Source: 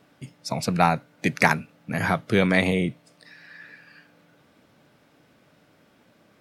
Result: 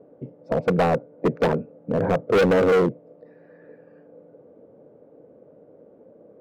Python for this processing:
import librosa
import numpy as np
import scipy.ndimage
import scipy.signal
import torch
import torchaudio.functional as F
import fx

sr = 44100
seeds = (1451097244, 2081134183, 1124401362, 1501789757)

y = fx.lowpass_res(x, sr, hz=490.0, q=4.9)
y = fx.low_shelf(y, sr, hz=150.0, db=-9.0)
y = np.clip(y, -10.0 ** (-20.5 / 20.0), 10.0 ** (-20.5 / 20.0))
y = y * librosa.db_to_amplitude(5.5)